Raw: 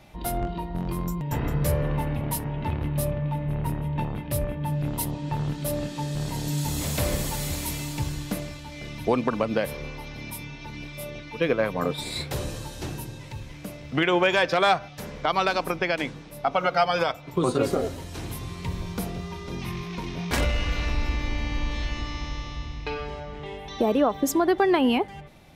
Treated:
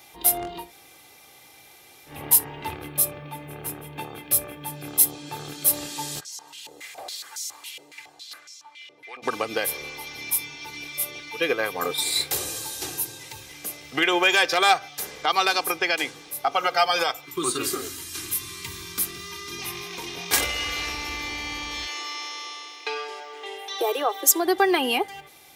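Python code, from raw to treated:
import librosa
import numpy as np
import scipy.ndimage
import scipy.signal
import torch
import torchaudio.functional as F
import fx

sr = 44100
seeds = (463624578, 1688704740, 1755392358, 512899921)

y = fx.notch_comb(x, sr, f0_hz=960.0, at=(2.75, 5.67))
y = fx.filter_held_bandpass(y, sr, hz=7.2, low_hz=510.0, high_hz=5900.0, at=(6.19, 9.22), fade=0.02)
y = fx.band_shelf(y, sr, hz=620.0, db=-15.5, octaves=1.1, at=(17.25, 19.59))
y = fx.steep_highpass(y, sr, hz=330.0, slope=48, at=(21.85, 24.43), fade=0.02)
y = fx.edit(y, sr, fx.room_tone_fill(start_s=0.65, length_s=1.48, crossfade_s=0.16), tone=tone)
y = scipy.signal.sosfilt(scipy.signal.butter(2, 55.0, 'highpass', fs=sr, output='sos'), y)
y = fx.riaa(y, sr, side='recording')
y = y + 0.54 * np.pad(y, (int(2.5 * sr / 1000.0), 0))[:len(y)]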